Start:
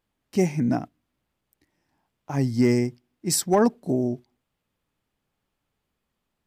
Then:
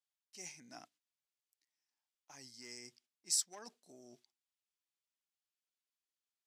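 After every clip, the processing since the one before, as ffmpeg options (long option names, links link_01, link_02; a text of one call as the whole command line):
ffmpeg -i in.wav -af "agate=range=-9dB:threshold=-47dB:ratio=16:detection=peak,areverse,acompressor=threshold=-29dB:ratio=5,areverse,bandpass=frequency=6200:width_type=q:width=1.2:csg=0,volume=1.5dB" out.wav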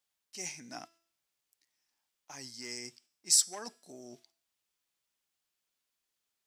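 ffmpeg -i in.wav -af "bandreject=frequency=334.1:width_type=h:width=4,bandreject=frequency=668.2:width_type=h:width=4,bandreject=frequency=1002.3:width_type=h:width=4,bandreject=frequency=1336.4:width_type=h:width=4,bandreject=frequency=1670.5:width_type=h:width=4,bandreject=frequency=2004.6:width_type=h:width=4,bandreject=frequency=2338.7:width_type=h:width=4,bandreject=frequency=2672.8:width_type=h:width=4,bandreject=frequency=3006.9:width_type=h:width=4,bandreject=frequency=3341:width_type=h:width=4,bandreject=frequency=3675.1:width_type=h:width=4,bandreject=frequency=4009.2:width_type=h:width=4,bandreject=frequency=4343.3:width_type=h:width=4,bandreject=frequency=4677.4:width_type=h:width=4,bandreject=frequency=5011.5:width_type=h:width=4,bandreject=frequency=5345.6:width_type=h:width=4,bandreject=frequency=5679.7:width_type=h:width=4,bandreject=frequency=6013.8:width_type=h:width=4,bandreject=frequency=6347.9:width_type=h:width=4,bandreject=frequency=6682:width_type=h:width=4,bandreject=frequency=7016.1:width_type=h:width=4,bandreject=frequency=7350.2:width_type=h:width=4,bandreject=frequency=7684.3:width_type=h:width=4,bandreject=frequency=8018.4:width_type=h:width=4,bandreject=frequency=8352.5:width_type=h:width=4,bandreject=frequency=8686.6:width_type=h:width=4,bandreject=frequency=9020.7:width_type=h:width=4,bandreject=frequency=9354.8:width_type=h:width=4,bandreject=frequency=9688.9:width_type=h:width=4,bandreject=frequency=10023:width_type=h:width=4,bandreject=frequency=10357.1:width_type=h:width=4,bandreject=frequency=10691.2:width_type=h:width=4,bandreject=frequency=11025.3:width_type=h:width=4,bandreject=frequency=11359.4:width_type=h:width=4,bandreject=frequency=11693.5:width_type=h:width=4,bandreject=frequency=12027.6:width_type=h:width=4,volume=9dB" out.wav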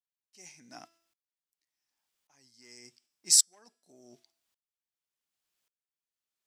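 ffmpeg -i in.wav -af "aeval=exprs='val(0)*pow(10,-26*if(lt(mod(-0.88*n/s,1),2*abs(-0.88)/1000),1-mod(-0.88*n/s,1)/(2*abs(-0.88)/1000),(mod(-0.88*n/s,1)-2*abs(-0.88)/1000)/(1-2*abs(-0.88)/1000))/20)':channel_layout=same,volume=4.5dB" out.wav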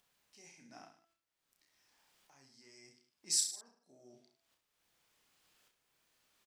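ffmpeg -i in.wav -filter_complex "[0:a]highshelf=frequency=5200:gain=-8.5,acompressor=mode=upward:threshold=-51dB:ratio=2.5,asplit=2[link_01][link_02];[link_02]aecho=0:1:30|64.5|104.2|149.8|202.3:0.631|0.398|0.251|0.158|0.1[link_03];[link_01][link_03]amix=inputs=2:normalize=0,volume=-6.5dB" out.wav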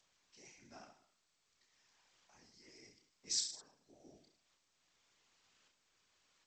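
ffmpeg -i in.wav -af "bandreject=frequency=58.09:width_type=h:width=4,bandreject=frequency=116.18:width_type=h:width=4,bandreject=frequency=174.27:width_type=h:width=4,bandreject=frequency=232.36:width_type=h:width=4,bandreject=frequency=290.45:width_type=h:width=4,bandreject=frequency=348.54:width_type=h:width=4,bandreject=frequency=406.63:width_type=h:width=4,bandreject=frequency=464.72:width_type=h:width=4,bandreject=frequency=522.81:width_type=h:width=4,bandreject=frequency=580.9:width_type=h:width=4,bandreject=frequency=638.99:width_type=h:width=4,bandreject=frequency=697.08:width_type=h:width=4,bandreject=frequency=755.17:width_type=h:width=4,bandreject=frequency=813.26:width_type=h:width=4,bandreject=frequency=871.35:width_type=h:width=4,bandreject=frequency=929.44:width_type=h:width=4,bandreject=frequency=987.53:width_type=h:width=4,afftfilt=real='hypot(re,im)*cos(2*PI*random(0))':imag='hypot(re,im)*sin(2*PI*random(1))':win_size=512:overlap=0.75,volume=4.5dB" -ar 16000 -c:a g722 out.g722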